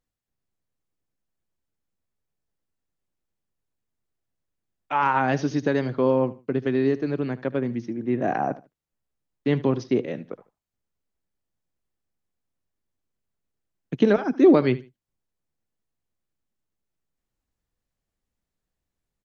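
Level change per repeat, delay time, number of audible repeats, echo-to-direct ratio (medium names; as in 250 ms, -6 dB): -13.0 dB, 75 ms, 2, -18.0 dB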